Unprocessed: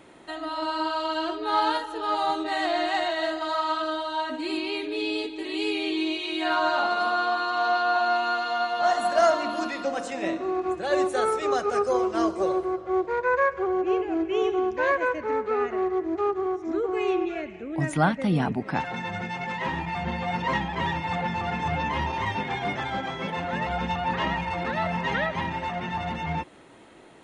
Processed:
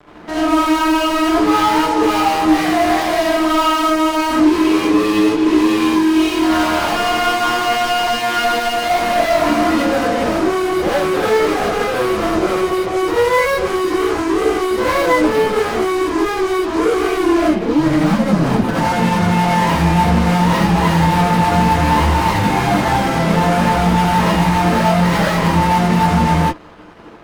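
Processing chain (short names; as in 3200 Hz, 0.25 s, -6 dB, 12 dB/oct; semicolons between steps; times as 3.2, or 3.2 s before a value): LPF 3100 Hz; tilt shelf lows +5.5 dB, about 1300 Hz; limiter -17.5 dBFS, peak gain reduction 11 dB; fuzz box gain 34 dB, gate -44 dBFS; non-linear reverb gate 0.11 s rising, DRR -7 dB; gain -8.5 dB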